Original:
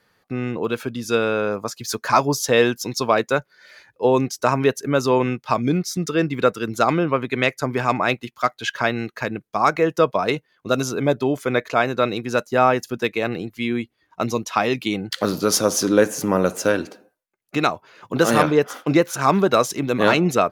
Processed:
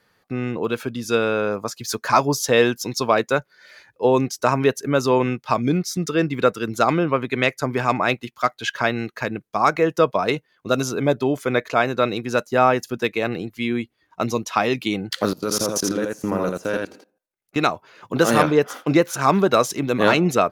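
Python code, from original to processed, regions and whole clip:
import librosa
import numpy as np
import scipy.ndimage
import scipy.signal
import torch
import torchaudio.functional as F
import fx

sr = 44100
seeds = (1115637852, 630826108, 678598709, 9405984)

y = fx.chain(x, sr, fx.level_steps(step_db=23),
    fx.echo_single(ms=82, db=-3.0), at=(15.33, 17.56))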